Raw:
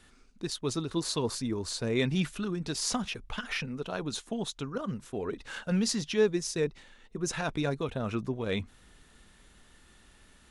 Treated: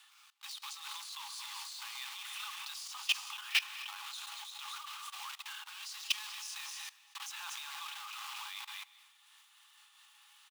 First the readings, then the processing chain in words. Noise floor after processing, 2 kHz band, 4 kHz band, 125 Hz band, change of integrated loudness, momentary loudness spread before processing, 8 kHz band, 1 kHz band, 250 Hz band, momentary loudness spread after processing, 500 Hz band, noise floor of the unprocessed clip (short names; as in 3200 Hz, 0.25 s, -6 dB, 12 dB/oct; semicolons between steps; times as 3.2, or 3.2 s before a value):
-64 dBFS, -2.0 dB, -0.5 dB, under -40 dB, -7.5 dB, 8 LU, -6.5 dB, -5.5 dB, under -40 dB, 11 LU, under -40 dB, -60 dBFS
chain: block floating point 3-bit; non-linear reverb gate 0.45 s flat, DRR 11.5 dB; limiter -23.5 dBFS, peak gain reduction 10 dB; rippled Chebyshev high-pass 800 Hz, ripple 9 dB; high shelf 4800 Hz +3 dB; echo 0.235 s -11.5 dB; level quantiser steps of 18 dB; noise-modulated level, depth 60%; gain +12 dB